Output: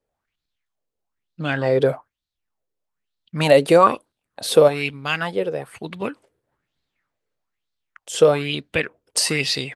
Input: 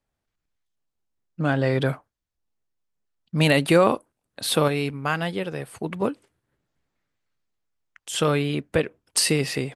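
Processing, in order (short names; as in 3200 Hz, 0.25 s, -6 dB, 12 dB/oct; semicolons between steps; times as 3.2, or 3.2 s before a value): dynamic EQ 6000 Hz, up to +6 dB, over -42 dBFS, Q 1.1; LFO bell 1.1 Hz 440–4100 Hz +16 dB; gain -3 dB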